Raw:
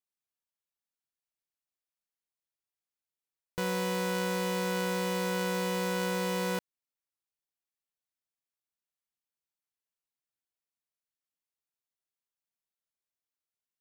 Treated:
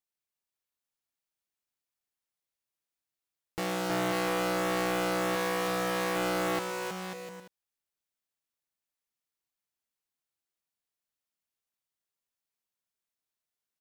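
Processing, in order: 5.35–6.16 s: bass shelf 230 Hz -6 dB; on a send: bouncing-ball echo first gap 320 ms, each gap 0.7×, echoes 5; on the sum: loudspeaker Doppler distortion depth 0.73 ms

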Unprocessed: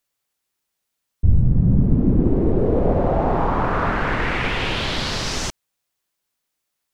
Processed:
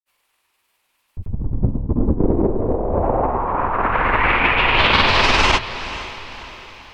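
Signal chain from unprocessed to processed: hum notches 60/120/180/240/300/360/420 Hz; low-pass that closes with the level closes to 940 Hz, closed at -13.5 dBFS; fifteen-band graphic EQ 160 Hz -9 dB, 1 kHz +8 dB, 2.5 kHz +8 dB, 6.3 kHz -6 dB; compressor with a negative ratio -22 dBFS, ratio -0.5; peak limiter -12 dBFS, peak gain reduction 5 dB; granulator, pitch spread up and down by 0 st; echo that smears into a reverb 504 ms, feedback 47%, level -14 dB; trim +8 dB

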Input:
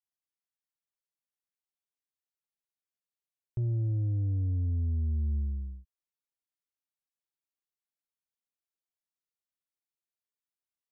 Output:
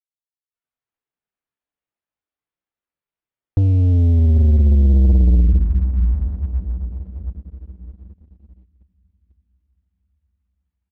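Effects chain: distance through air 290 m; doubling 13 ms -10.5 dB; echo that smears into a reverb 716 ms, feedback 42%, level -9 dB; level rider gain up to 10.5 dB; spectral noise reduction 24 dB; pitch shift -3.5 st; waveshaping leveller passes 2; trim +1.5 dB

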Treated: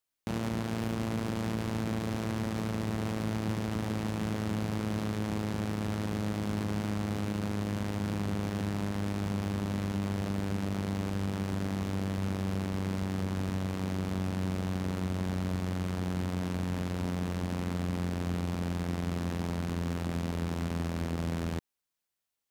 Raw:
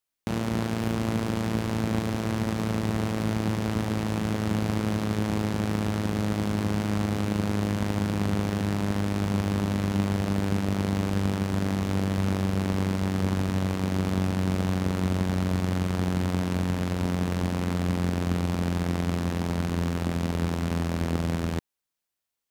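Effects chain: peak limiter -20.5 dBFS, peak gain reduction 8.5 dB; trim -1.5 dB

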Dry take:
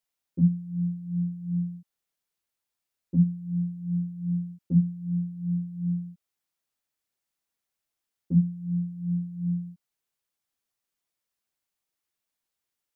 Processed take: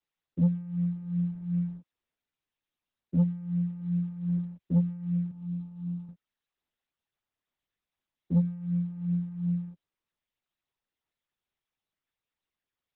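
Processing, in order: waveshaping leveller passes 1; 5.31–6.09 s: static phaser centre 470 Hz, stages 6; trim -4.5 dB; Opus 8 kbps 48 kHz

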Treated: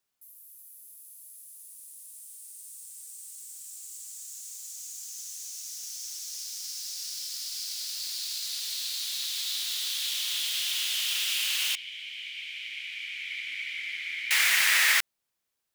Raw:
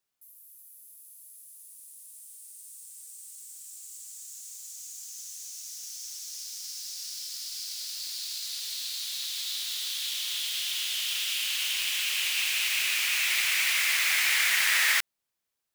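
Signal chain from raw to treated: 11.75–14.31 s: vowel filter i; trim +1.5 dB

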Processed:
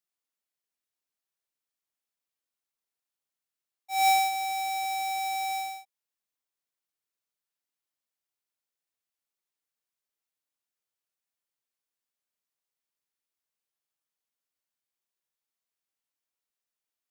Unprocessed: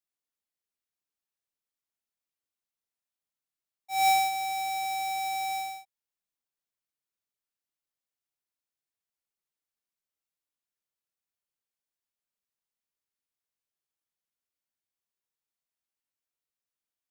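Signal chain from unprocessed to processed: bass shelf 170 Hz -8.5 dB; trim +1 dB

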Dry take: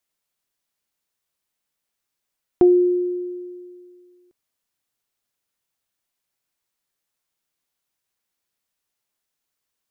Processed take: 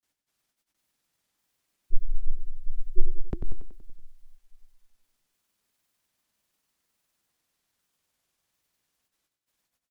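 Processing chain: granulator, spray 985 ms, pitch spread up and down by 0 st; feedback delay 94 ms, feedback 58%, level -8 dB; frequency shift -350 Hz; trim +5 dB

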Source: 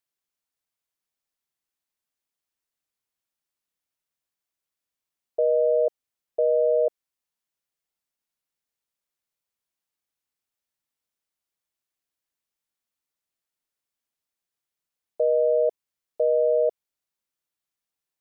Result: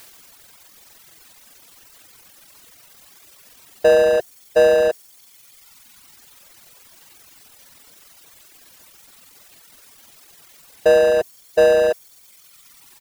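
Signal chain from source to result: power-law waveshaper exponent 0.5; tempo 1.4×; reverb removal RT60 1.6 s; trim +7.5 dB

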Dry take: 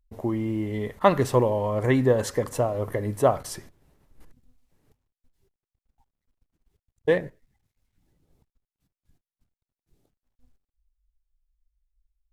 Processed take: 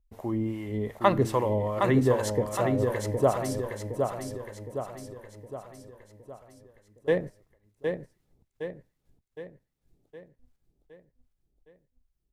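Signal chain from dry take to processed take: harmonic tremolo 2.5 Hz, depth 70%, crossover 670 Hz; on a send: feedback delay 764 ms, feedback 51%, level -5 dB

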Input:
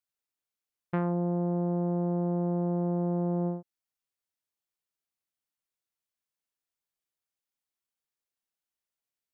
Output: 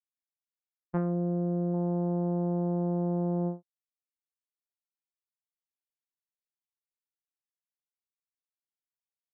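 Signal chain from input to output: low-pass 1.3 kHz 12 dB/octave; expander -25 dBFS; 0.97–1.74 s: peaking EQ 890 Hz -13.5 dB 0.38 oct; trim +2.5 dB

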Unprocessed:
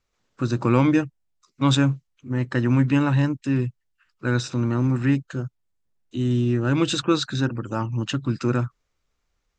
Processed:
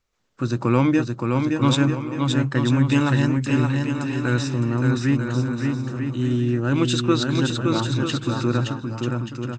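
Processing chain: 2.84–4.34 s: treble shelf 3.8 kHz +10 dB; bouncing-ball echo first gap 570 ms, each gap 0.65×, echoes 5

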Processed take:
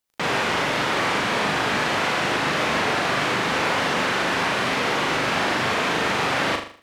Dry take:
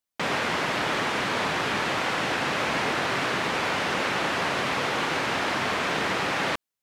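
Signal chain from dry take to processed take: in parallel at -0.5 dB: peak limiter -22 dBFS, peak gain reduction 8 dB; on the sum: crackle 13 per s -39 dBFS; flutter echo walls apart 6.9 m, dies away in 0.47 s; trim -1.5 dB

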